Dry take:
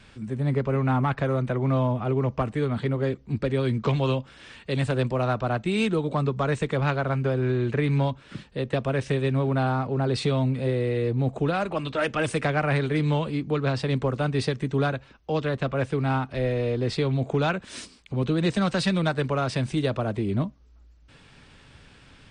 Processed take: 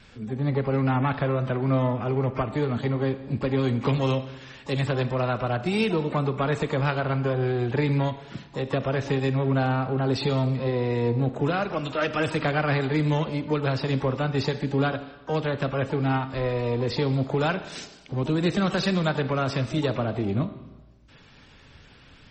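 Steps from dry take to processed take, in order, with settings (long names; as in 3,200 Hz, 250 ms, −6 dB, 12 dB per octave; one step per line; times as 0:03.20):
pitch-shifted copies added +12 semitones −14 dB
four-comb reverb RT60 1.2 s, combs from 26 ms, DRR 11 dB
MP3 32 kbit/s 48,000 Hz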